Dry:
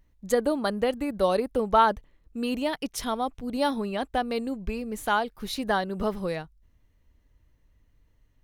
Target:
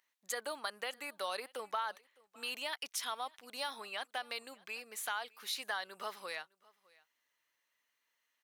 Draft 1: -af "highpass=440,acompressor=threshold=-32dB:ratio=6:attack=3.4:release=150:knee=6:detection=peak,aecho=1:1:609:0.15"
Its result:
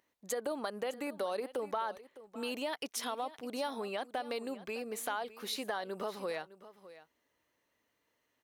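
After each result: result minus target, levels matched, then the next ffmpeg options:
500 Hz band +6.5 dB; echo-to-direct +8.5 dB
-af "highpass=1.3k,acompressor=threshold=-32dB:ratio=6:attack=3.4:release=150:knee=6:detection=peak,aecho=1:1:609:0.15"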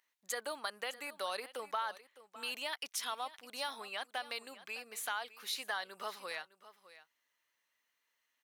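echo-to-direct +8.5 dB
-af "highpass=1.3k,acompressor=threshold=-32dB:ratio=6:attack=3.4:release=150:knee=6:detection=peak,aecho=1:1:609:0.0562"

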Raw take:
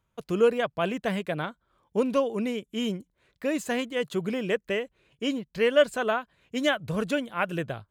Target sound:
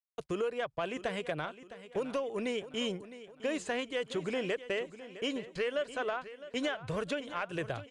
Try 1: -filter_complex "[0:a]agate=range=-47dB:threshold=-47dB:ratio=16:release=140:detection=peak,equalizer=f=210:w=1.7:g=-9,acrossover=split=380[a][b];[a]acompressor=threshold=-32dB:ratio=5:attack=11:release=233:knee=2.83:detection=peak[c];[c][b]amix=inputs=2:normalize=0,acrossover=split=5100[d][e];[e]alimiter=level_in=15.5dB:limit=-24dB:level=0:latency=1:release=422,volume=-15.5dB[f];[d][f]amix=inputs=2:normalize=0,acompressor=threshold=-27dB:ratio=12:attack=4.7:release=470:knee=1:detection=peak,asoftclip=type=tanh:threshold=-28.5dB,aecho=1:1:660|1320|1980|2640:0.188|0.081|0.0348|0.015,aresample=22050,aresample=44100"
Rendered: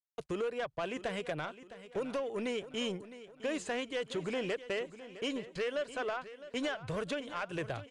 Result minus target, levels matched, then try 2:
soft clip: distortion +9 dB
-filter_complex "[0:a]agate=range=-47dB:threshold=-47dB:ratio=16:release=140:detection=peak,equalizer=f=210:w=1.7:g=-9,acrossover=split=380[a][b];[a]acompressor=threshold=-32dB:ratio=5:attack=11:release=233:knee=2.83:detection=peak[c];[c][b]amix=inputs=2:normalize=0,acrossover=split=5100[d][e];[e]alimiter=level_in=15.5dB:limit=-24dB:level=0:latency=1:release=422,volume=-15.5dB[f];[d][f]amix=inputs=2:normalize=0,acompressor=threshold=-27dB:ratio=12:attack=4.7:release=470:knee=1:detection=peak,asoftclip=type=tanh:threshold=-22.5dB,aecho=1:1:660|1320|1980|2640:0.188|0.081|0.0348|0.015,aresample=22050,aresample=44100"

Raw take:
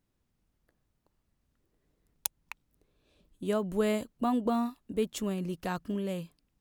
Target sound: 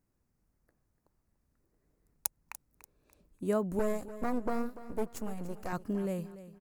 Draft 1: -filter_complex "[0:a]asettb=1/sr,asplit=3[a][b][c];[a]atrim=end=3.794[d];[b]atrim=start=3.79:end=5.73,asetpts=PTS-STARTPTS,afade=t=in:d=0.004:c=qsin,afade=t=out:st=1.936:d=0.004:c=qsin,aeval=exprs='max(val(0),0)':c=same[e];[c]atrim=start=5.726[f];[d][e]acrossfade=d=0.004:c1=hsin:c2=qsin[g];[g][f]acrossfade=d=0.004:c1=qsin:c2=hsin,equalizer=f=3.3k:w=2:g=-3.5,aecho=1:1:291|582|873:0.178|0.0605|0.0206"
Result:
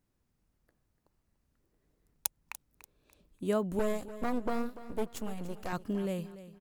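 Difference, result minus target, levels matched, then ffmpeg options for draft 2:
4000 Hz band +5.5 dB
-filter_complex "[0:a]asettb=1/sr,asplit=3[a][b][c];[a]atrim=end=3.794[d];[b]atrim=start=3.79:end=5.73,asetpts=PTS-STARTPTS,afade=t=in:d=0.004:c=qsin,afade=t=out:st=1.936:d=0.004:c=qsin,aeval=exprs='max(val(0),0)':c=same[e];[c]atrim=start=5.726[f];[d][e]acrossfade=d=0.004:c1=hsin:c2=qsin[g];[g][f]acrossfade=d=0.004:c1=qsin:c2=hsin,equalizer=f=3.3k:w=2:g=-13.5,aecho=1:1:291|582|873:0.178|0.0605|0.0206"

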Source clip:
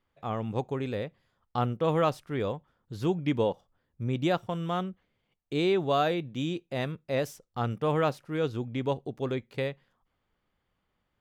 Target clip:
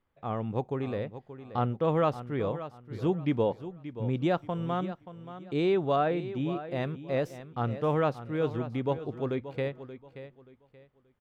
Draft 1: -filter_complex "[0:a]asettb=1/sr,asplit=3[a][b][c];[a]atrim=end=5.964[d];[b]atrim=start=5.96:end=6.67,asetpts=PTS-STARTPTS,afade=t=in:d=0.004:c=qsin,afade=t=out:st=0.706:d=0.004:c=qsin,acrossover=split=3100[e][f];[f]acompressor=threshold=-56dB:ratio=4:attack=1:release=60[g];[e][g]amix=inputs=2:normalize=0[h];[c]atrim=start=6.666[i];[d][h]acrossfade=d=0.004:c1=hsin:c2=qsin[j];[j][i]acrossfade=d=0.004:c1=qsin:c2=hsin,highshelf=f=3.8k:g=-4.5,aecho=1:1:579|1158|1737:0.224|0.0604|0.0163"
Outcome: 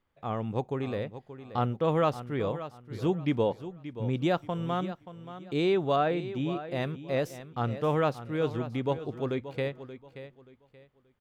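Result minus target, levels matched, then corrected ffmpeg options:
8000 Hz band +6.5 dB
-filter_complex "[0:a]asettb=1/sr,asplit=3[a][b][c];[a]atrim=end=5.964[d];[b]atrim=start=5.96:end=6.67,asetpts=PTS-STARTPTS,afade=t=in:d=0.004:c=qsin,afade=t=out:st=0.706:d=0.004:c=qsin,acrossover=split=3100[e][f];[f]acompressor=threshold=-56dB:ratio=4:attack=1:release=60[g];[e][g]amix=inputs=2:normalize=0[h];[c]atrim=start=6.666[i];[d][h]acrossfade=d=0.004:c1=hsin:c2=qsin[j];[j][i]acrossfade=d=0.004:c1=qsin:c2=hsin,highshelf=f=3.8k:g=-13,aecho=1:1:579|1158|1737:0.224|0.0604|0.0163"

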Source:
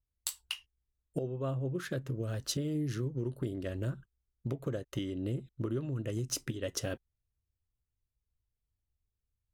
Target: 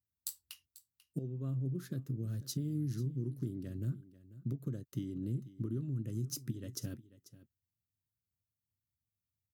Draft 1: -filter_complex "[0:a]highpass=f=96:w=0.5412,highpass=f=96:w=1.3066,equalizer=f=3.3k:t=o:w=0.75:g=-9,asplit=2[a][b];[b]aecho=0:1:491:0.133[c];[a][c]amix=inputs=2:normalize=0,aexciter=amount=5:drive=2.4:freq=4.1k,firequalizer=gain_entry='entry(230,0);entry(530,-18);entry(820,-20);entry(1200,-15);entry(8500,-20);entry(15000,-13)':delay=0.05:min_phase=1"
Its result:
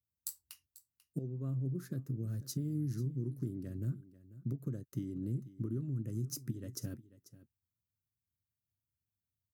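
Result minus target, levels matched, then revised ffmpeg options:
4000 Hz band -3.5 dB
-filter_complex "[0:a]highpass=f=96:w=0.5412,highpass=f=96:w=1.3066,asplit=2[a][b];[b]aecho=0:1:491:0.133[c];[a][c]amix=inputs=2:normalize=0,aexciter=amount=5:drive=2.4:freq=4.1k,firequalizer=gain_entry='entry(230,0);entry(530,-18);entry(820,-20);entry(1200,-15);entry(8500,-20);entry(15000,-13)':delay=0.05:min_phase=1"

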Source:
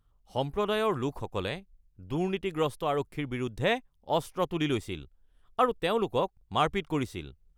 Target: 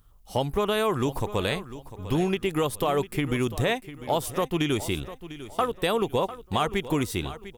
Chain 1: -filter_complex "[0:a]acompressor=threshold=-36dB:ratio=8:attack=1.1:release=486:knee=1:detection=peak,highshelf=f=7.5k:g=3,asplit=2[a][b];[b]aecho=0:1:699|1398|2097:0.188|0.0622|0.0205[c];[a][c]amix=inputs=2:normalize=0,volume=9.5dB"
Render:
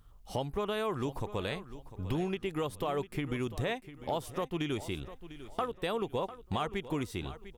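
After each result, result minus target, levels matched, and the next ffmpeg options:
compressor: peak gain reduction +8.5 dB; 8000 Hz band -4.5 dB
-filter_complex "[0:a]acompressor=threshold=-26.5dB:ratio=8:attack=1.1:release=486:knee=1:detection=peak,highshelf=f=7.5k:g=3,asplit=2[a][b];[b]aecho=0:1:699|1398|2097:0.188|0.0622|0.0205[c];[a][c]amix=inputs=2:normalize=0,volume=9.5dB"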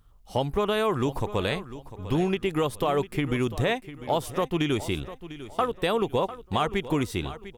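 8000 Hz band -4.5 dB
-filter_complex "[0:a]acompressor=threshold=-26.5dB:ratio=8:attack=1.1:release=486:knee=1:detection=peak,highshelf=f=7.5k:g=12,asplit=2[a][b];[b]aecho=0:1:699|1398|2097:0.188|0.0622|0.0205[c];[a][c]amix=inputs=2:normalize=0,volume=9.5dB"

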